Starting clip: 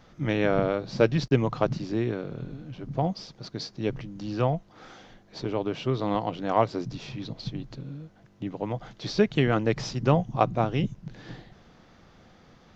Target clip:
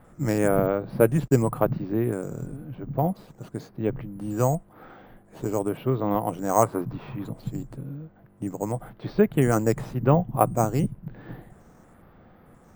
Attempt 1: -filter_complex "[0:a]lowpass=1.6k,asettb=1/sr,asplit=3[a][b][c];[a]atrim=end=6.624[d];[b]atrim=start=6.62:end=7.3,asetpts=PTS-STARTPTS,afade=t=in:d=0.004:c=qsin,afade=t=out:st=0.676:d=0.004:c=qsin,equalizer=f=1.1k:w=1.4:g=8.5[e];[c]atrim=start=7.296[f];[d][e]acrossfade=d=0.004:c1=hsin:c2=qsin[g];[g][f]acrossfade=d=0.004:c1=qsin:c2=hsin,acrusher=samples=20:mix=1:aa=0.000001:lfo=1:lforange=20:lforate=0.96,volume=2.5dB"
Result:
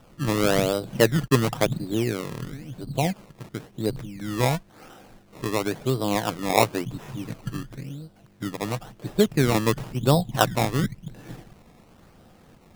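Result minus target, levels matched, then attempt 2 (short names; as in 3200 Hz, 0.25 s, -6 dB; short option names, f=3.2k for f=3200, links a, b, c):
decimation with a swept rate: distortion +15 dB
-filter_complex "[0:a]lowpass=1.6k,asettb=1/sr,asplit=3[a][b][c];[a]atrim=end=6.624[d];[b]atrim=start=6.62:end=7.3,asetpts=PTS-STARTPTS,afade=t=in:d=0.004:c=qsin,afade=t=out:st=0.676:d=0.004:c=qsin,equalizer=f=1.1k:w=1.4:g=8.5[e];[c]atrim=start=7.296[f];[d][e]acrossfade=d=0.004:c1=hsin:c2=qsin[g];[g][f]acrossfade=d=0.004:c1=qsin:c2=hsin,acrusher=samples=4:mix=1:aa=0.000001:lfo=1:lforange=4:lforate=0.96,volume=2.5dB"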